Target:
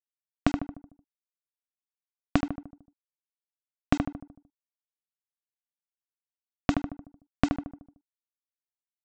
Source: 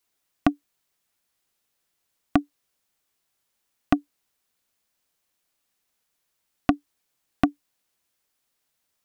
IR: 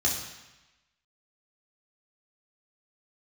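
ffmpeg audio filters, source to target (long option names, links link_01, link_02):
-filter_complex "[0:a]lowshelf=frequency=340:gain=9.5,acompressor=threshold=-18dB:ratio=10,aresample=16000,acrusher=bits=5:mix=0:aa=0.000001,aresample=44100,asplit=2[link_01][link_02];[link_02]adelay=75,lowpass=frequency=1400:poles=1,volume=-4.5dB,asplit=2[link_03][link_04];[link_04]adelay=75,lowpass=frequency=1400:poles=1,volume=0.51,asplit=2[link_05][link_06];[link_06]adelay=75,lowpass=frequency=1400:poles=1,volume=0.51,asplit=2[link_07][link_08];[link_08]adelay=75,lowpass=frequency=1400:poles=1,volume=0.51,asplit=2[link_09][link_10];[link_10]adelay=75,lowpass=frequency=1400:poles=1,volume=0.51,asplit=2[link_11][link_12];[link_12]adelay=75,lowpass=frequency=1400:poles=1,volume=0.51,asplit=2[link_13][link_14];[link_14]adelay=75,lowpass=frequency=1400:poles=1,volume=0.51[link_15];[link_01][link_03][link_05][link_07][link_09][link_11][link_13][link_15]amix=inputs=8:normalize=0,volume=-1.5dB"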